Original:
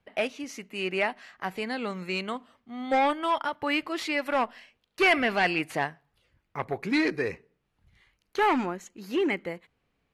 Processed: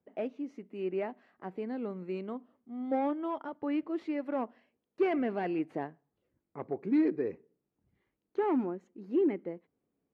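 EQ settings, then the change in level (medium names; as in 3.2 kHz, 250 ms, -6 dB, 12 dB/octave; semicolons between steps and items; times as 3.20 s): band-pass filter 310 Hz, Q 1.4; 0.0 dB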